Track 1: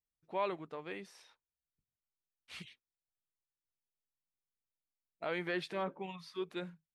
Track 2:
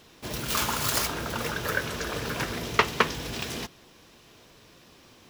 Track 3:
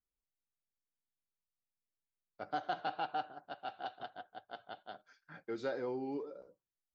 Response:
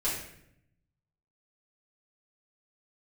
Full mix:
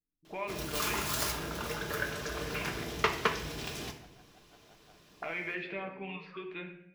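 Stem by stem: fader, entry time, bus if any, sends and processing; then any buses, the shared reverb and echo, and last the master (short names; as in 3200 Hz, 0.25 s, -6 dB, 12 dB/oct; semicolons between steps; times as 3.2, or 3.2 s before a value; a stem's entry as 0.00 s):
-0.5 dB, 0.00 s, send -7 dB, compressor 3:1, threshold -44 dBFS, peak gain reduction 11 dB; envelope low-pass 280–2400 Hz up, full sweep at -47 dBFS
-9.0 dB, 0.25 s, send -9.5 dB, dry
-15.5 dB, 0.00 s, no send, limiter -32.5 dBFS, peak gain reduction 7.5 dB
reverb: on, RT60 0.75 s, pre-delay 3 ms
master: dry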